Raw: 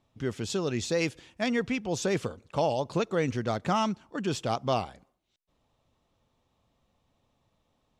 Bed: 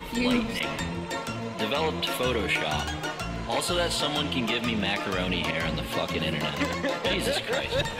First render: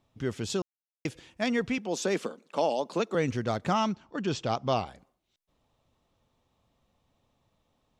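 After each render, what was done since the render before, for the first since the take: 0.62–1.05 s: mute; 1.78–3.15 s: steep high-pass 190 Hz; 3.74–4.87 s: low-pass 6.7 kHz 24 dB/octave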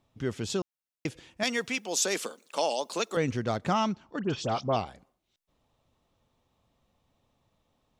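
1.43–3.17 s: RIAA curve recording; 4.19–4.76 s: phase dispersion highs, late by 63 ms, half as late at 2 kHz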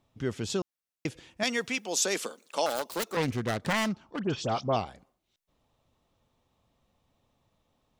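2.66–4.27 s: self-modulated delay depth 0.46 ms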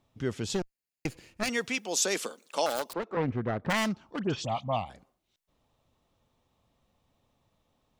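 0.54–1.49 s: comb filter that takes the minimum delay 0.42 ms; 2.93–3.70 s: low-pass 1.5 kHz; 4.45–4.90 s: static phaser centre 1.5 kHz, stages 6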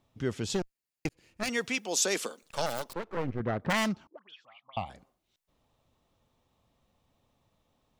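1.09–1.71 s: fade in equal-power; 2.42–3.40 s: partial rectifier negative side -12 dB; 4.07–4.77 s: auto-wah 300–3400 Hz, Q 13, up, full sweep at -25 dBFS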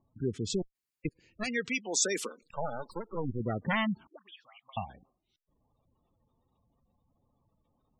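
peaking EQ 610 Hz -3.5 dB 0.7 oct; spectral gate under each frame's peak -15 dB strong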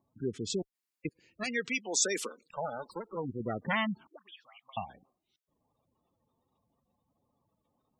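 high-pass 200 Hz 6 dB/octave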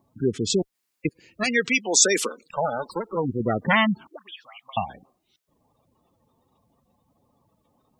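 trim +11 dB

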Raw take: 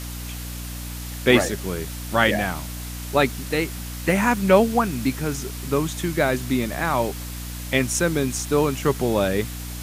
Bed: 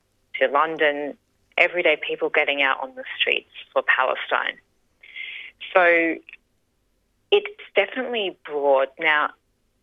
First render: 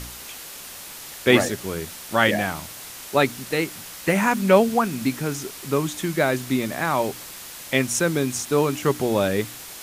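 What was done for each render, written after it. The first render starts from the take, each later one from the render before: de-hum 60 Hz, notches 5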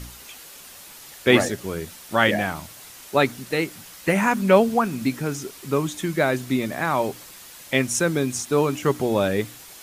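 noise reduction 6 dB, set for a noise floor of -39 dBFS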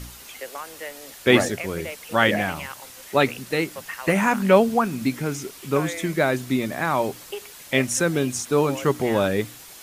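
add bed -16.5 dB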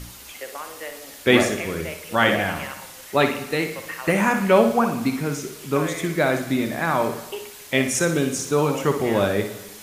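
flutter echo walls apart 10.3 m, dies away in 0.41 s; gated-style reverb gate 440 ms falling, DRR 11 dB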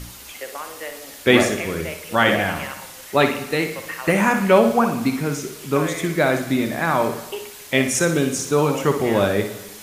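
trim +2 dB; peak limiter -2 dBFS, peak gain reduction 2 dB

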